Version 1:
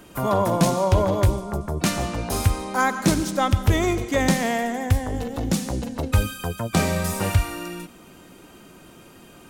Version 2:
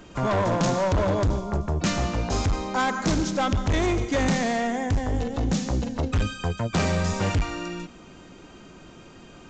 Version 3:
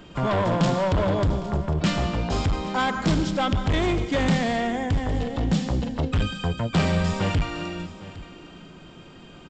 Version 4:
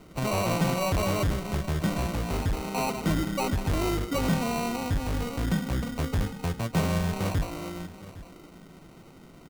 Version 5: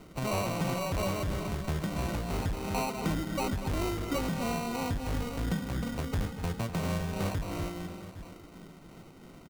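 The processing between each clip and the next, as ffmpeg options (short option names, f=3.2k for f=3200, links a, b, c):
-af "lowshelf=f=78:g=6.5,aresample=16000,volume=19dB,asoftclip=hard,volume=-19dB,aresample=44100"
-af "equalizer=f=160:t=o:w=0.33:g=6,equalizer=f=3.15k:t=o:w=0.33:g=5,equalizer=f=6.3k:t=o:w=0.33:g=-9,aecho=1:1:809:0.141"
-af "lowpass=2.5k,bandreject=f=1.6k:w=12,acrusher=samples=26:mix=1:aa=0.000001,volume=-4dB"
-filter_complex "[0:a]asplit=2[a][b];[b]adelay=244.9,volume=-10dB,highshelf=f=4k:g=-5.51[c];[a][c]amix=inputs=2:normalize=0,acompressor=threshold=-27dB:ratio=6,tremolo=f=2.9:d=0.3"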